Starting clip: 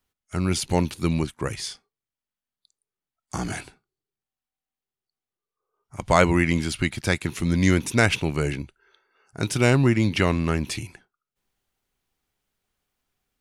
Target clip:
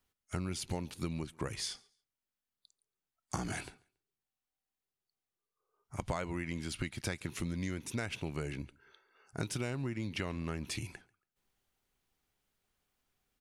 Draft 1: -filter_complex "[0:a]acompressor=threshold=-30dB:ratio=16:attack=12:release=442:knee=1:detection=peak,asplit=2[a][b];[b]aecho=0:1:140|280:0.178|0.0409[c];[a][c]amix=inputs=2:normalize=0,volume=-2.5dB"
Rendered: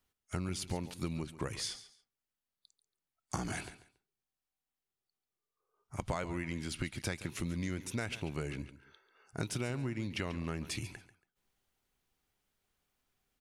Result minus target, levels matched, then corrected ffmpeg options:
echo-to-direct +11.5 dB
-filter_complex "[0:a]acompressor=threshold=-30dB:ratio=16:attack=12:release=442:knee=1:detection=peak,asplit=2[a][b];[b]aecho=0:1:140|280:0.0473|0.0109[c];[a][c]amix=inputs=2:normalize=0,volume=-2.5dB"

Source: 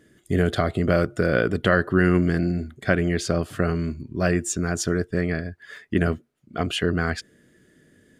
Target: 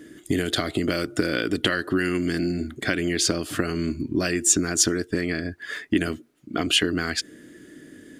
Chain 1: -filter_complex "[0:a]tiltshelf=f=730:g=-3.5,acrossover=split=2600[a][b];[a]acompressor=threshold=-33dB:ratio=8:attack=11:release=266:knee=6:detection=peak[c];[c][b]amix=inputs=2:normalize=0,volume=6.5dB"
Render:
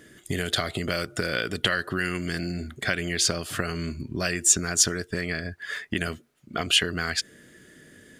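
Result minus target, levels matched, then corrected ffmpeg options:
250 Hz band -6.0 dB
-filter_complex "[0:a]tiltshelf=f=730:g=-3.5,acrossover=split=2600[a][b];[a]acompressor=threshold=-33dB:ratio=8:attack=11:release=266:knee=6:detection=peak,equalizer=f=300:w=2.4:g=14[c];[c][b]amix=inputs=2:normalize=0,volume=6.5dB"

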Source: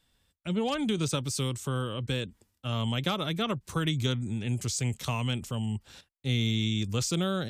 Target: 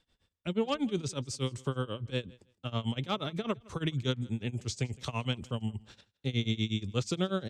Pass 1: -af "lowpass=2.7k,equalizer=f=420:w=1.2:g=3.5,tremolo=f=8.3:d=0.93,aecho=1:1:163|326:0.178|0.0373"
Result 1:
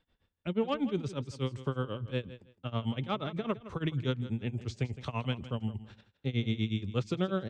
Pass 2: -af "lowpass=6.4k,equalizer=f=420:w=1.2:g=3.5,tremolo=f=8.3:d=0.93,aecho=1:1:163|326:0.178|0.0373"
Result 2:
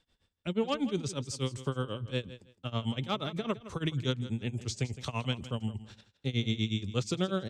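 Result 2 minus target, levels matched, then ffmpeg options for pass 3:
echo-to-direct +9.5 dB
-af "lowpass=6.4k,equalizer=f=420:w=1.2:g=3.5,tremolo=f=8.3:d=0.93,aecho=1:1:163|326:0.0596|0.0125"

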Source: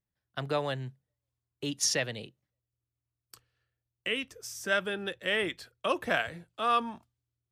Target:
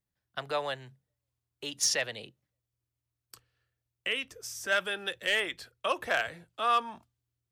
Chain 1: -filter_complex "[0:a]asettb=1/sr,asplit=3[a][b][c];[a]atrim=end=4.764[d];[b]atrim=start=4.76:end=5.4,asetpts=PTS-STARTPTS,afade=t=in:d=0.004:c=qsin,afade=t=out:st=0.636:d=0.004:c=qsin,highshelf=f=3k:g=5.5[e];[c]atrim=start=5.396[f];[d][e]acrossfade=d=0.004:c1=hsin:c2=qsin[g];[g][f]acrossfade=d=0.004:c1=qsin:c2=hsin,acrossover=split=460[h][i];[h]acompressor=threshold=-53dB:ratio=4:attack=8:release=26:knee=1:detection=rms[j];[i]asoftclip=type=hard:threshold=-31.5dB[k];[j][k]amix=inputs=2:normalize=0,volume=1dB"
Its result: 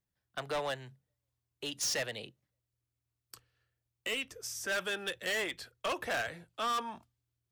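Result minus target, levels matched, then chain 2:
hard clip: distortion +16 dB
-filter_complex "[0:a]asettb=1/sr,asplit=3[a][b][c];[a]atrim=end=4.764[d];[b]atrim=start=4.76:end=5.4,asetpts=PTS-STARTPTS,afade=t=in:d=0.004:c=qsin,afade=t=out:st=0.636:d=0.004:c=qsin,highshelf=f=3k:g=5.5[e];[c]atrim=start=5.396[f];[d][e]acrossfade=d=0.004:c1=hsin:c2=qsin[g];[g][f]acrossfade=d=0.004:c1=qsin:c2=hsin,acrossover=split=460[h][i];[h]acompressor=threshold=-53dB:ratio=4:attack=8:release=26:knee=1:detection=rms[j];[i]asoftclip=type=hard:threshold=-20dB[k];[j][k]amix=inputs=2:normalize=0,volume=1dB"

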